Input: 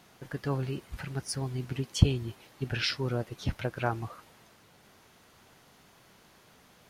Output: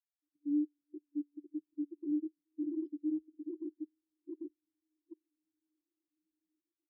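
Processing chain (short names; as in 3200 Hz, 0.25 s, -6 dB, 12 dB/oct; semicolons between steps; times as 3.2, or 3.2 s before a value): regenerating reverse delay 0.397 s, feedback 75%, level -3.5 dB; passive tone stack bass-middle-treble 10-0-1; notch comb 410 Hz; frequency shift -430 Hz; pre-echo 0.11 s -15 dB; level quantiser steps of 23 dB; ripple EQ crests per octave 1.2, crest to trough 10 dB; on a send at -21.5 dB: reverb RT60 1.2 s, pre-delay 48 ms; on the sum: wavefolder -39 dBFS; spectral expander 2.5:1; gain +14 dB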